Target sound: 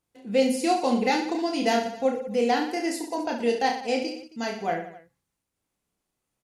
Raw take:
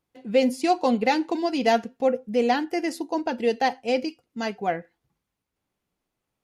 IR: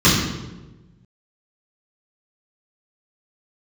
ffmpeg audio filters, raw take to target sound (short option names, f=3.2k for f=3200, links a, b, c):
-filter_complex "[0:a]equalizer=f=8.7k:t=o:w=1.2:g=8,asplit=2[a][b];[b]aecho=0:1:30|69|119.7|185.6|271.3:0.631|0.398|0.251|0.158|0.1[c];[a][c]amix=inputs=2:normalize=0,volume=-3.5dB"